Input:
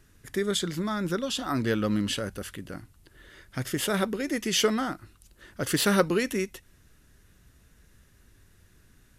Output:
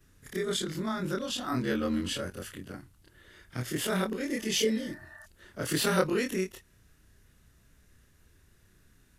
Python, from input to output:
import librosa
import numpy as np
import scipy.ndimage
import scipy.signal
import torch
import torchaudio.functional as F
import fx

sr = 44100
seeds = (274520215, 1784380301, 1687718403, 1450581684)

y = fx.frame_reverse(x, sr, frame_ms=64.0)
y = fx.spec_repair(y, sr, seeds[0], start_s=4.33, length_s=0.9, low_hz=620.0, high_hz=1900.0, source='before')